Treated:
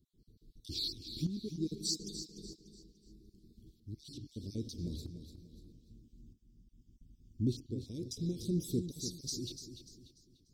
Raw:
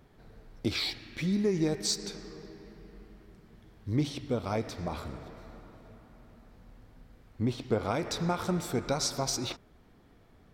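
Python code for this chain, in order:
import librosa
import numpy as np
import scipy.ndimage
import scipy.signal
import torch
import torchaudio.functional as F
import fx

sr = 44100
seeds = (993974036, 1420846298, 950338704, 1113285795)

p1 = fx.spec_dropout(x, sr, seeds[0], share_pct=26)
p2 = scipy.signal.sosfilt(scipy.signal.ellip(3, 1.0, 50, [350.0, 4000.0], 'bandstop', fs=sr, output='sos'), p1)
p3 = fx.peak_eq(p2, sr, hz=960.0, db=13.5, octaves=0.2)
p4 = fx.tremolo_shape(p3, sr, shape='saw_up', hz=0.79, depth_pct=75)
p5 = fx.fixed_phaser(p4, sr, hz=2800.0, stages=8, at=(5.72, 7.47))
y = p5 + fx.echo_feedback(p5, sr, ms=294, feedback_pct=36, wet_db=-10.0, dry=0)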